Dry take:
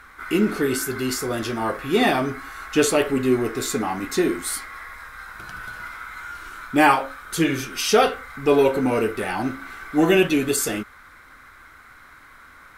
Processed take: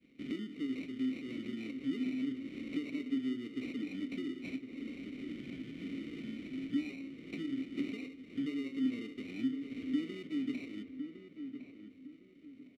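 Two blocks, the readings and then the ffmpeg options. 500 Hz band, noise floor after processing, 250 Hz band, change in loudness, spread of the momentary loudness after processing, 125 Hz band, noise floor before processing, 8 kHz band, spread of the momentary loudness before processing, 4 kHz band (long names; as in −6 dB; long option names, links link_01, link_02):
−27.5 dB, −58 dBFS, −11.5 dB, −18.0 dB, 10 LU, −20.0 dB, −48 dBFS, below −35 dB, 17 LU, −20.5 dB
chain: -filter_complex "[0:a]aemphasis=mode=production:type=75kf,agate=range=-33dB:threshold=-35dB:ratio=3:detection=peak,lowshelf=frequency=390:gain=11,acompressor=threshold=-31dB:ratio=16,acrusher=samples=27:mix=1:aa=0.000001,asplit=3[link_01][link_02][link_03];[link_01]bandpass=frequency=270:width_type=q:width=8,volume=0dB[link_04];[link_02]bandpass=frequency=2290:width_type=q:width=8,volume=-6dB[link_05];[link_03]bandpass=frequency=3010:width_type=q:width=8,volume=-9dB[link_06];[link_04][link_05][link_06]amix=inputs=3:normalize=0,asplit=2[link_07][link_08];[link_08]adelay=1058,lowpass=frequency=1600:poles=1,volume=-8dB,asplit=2[link_09][link_10];[link_10]adelay=1058,lowpass=frequency=1600:poles=1,volume=0.33,asplit=2[link_11][link_12];[link_12]adelay=1058,lowpass=frequency=1600:poles=1,volume=0.33,asplit=2[link_13][link_14];[link_14]adelay=1058,lowpass=frequency=1600:poles=1,volume=0.33[link_15];[link_07][link_09][link_11][link_13][link_15]amix=inputs=5:normalize=0,volume=4.5dB"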